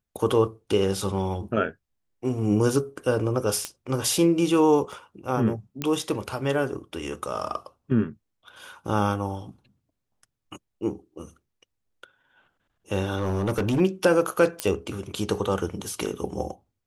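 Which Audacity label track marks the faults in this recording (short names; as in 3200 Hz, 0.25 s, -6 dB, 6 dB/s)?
3.650000	3.650000	pop -13 dBFS
4.920000	4.920000	gap 4.4 ms
5.820000	5.820000	pop -13 dBFS
13.170000	13.810000	clipped -20 dBFS
14.600000	14.600000	pop -9 dBFS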